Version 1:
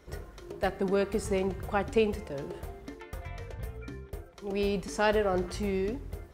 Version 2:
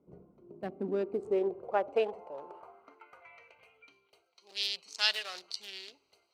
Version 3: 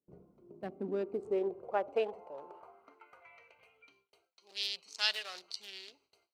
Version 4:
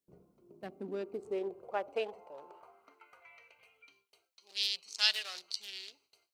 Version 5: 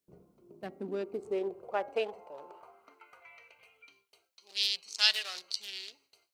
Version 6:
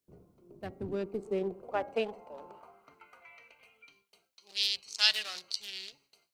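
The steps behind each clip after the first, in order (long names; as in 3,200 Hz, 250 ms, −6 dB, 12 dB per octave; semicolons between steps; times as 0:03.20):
adaptive Wiener filter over 25 samples; spectral tilt +4.5 dB per octave; band-pass filter sweep 200 Hz → 4,200 Hz, 0:00.56–0:04.29; level +8.5 dB
noise gate with hold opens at −57 dBFS; level −3 dB
high-shelf EQ 2,000 Hz +9.5 dB; level −4 dB
hum removal 272.4 Hz, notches 8; level +3 dB
sub-octave generator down 1 octave, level −3 dB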